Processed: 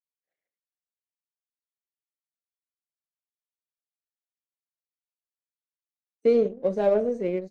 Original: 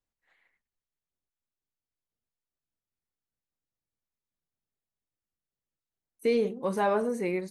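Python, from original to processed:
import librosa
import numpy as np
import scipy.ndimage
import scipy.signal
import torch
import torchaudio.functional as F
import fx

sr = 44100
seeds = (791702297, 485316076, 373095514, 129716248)

y = scipy.signal.sosfilt(scipy.signal.ellip(3, 1.0, 40, [170.0, 6700.0], 'bandpass', fs=sr, output='sos'), x)
y = fx.power_curve(y, sr, exponent=1.4)
y = fx.low_shelf_res(y, sr, hz=760.0, db=8.0, q=3.0)
y = y * 10.0 ** (-3.0 / 20.0)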